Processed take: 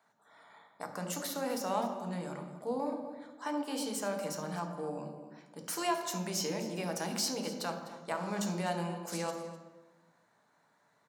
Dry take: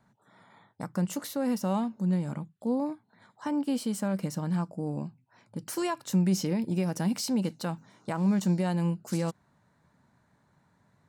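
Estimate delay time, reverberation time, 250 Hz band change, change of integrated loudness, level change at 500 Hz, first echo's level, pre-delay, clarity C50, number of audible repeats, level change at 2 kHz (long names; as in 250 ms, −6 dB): 252 ms, 1.2 s, −10.5 dB, −6.5 dB, −1.5 dB, −15.0 dB, 3 ms, 6.0 dB, 1, +1.0 dB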